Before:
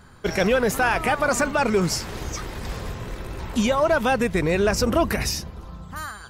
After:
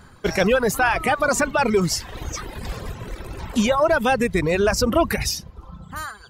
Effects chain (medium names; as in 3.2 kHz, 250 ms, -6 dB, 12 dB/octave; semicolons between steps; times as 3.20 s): reverb removal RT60 1.1 s; trim +2.5 dB